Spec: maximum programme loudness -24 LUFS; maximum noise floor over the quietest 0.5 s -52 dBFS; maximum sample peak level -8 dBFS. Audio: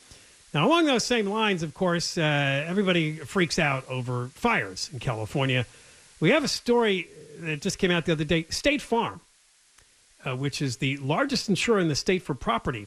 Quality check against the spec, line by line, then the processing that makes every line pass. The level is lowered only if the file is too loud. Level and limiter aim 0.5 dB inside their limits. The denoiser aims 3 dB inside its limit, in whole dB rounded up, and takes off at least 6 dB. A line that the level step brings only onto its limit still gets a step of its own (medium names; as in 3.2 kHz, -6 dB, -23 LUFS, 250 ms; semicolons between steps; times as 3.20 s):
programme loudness -25.5 LUFS: pass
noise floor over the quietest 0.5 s -61 dBFS: pass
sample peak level -9.0 dBFS: pass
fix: none needed